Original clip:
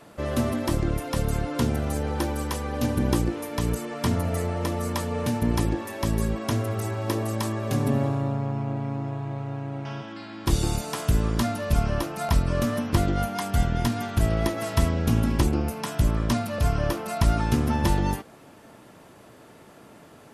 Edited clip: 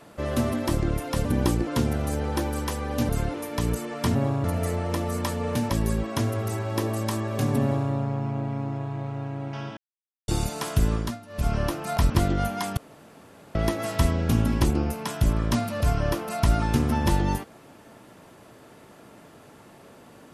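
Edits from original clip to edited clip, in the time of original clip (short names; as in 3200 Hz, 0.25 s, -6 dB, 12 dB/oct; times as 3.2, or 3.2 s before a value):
1.25–1.5 swap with 2.92–3.34
5.41–6.02 cut
7.94–8.23 copy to 4.15
10.09–10.6 mute
11.25–11.86 dip -16 dB, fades 0.26 s
12.42–12.88 cut
13.55–14.33 room tone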